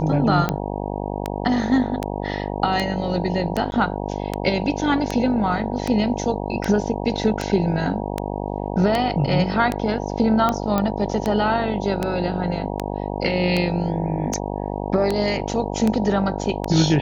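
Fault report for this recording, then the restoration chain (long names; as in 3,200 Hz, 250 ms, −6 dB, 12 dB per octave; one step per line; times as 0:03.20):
mains buzz 50 Hz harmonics 19 −27 dBFS
scratch tick 78 rpm −8 dBFS
0:03.71–0:03.72: drop-out 11 ms
0:10.78: click −8 dBFS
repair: click removal
hum removal 50 Hz, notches 19
repair the gap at 0:03.71, 11 ms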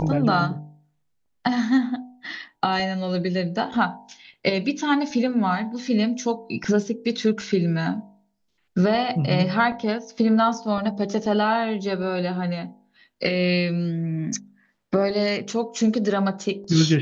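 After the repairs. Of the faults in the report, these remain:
none of them is left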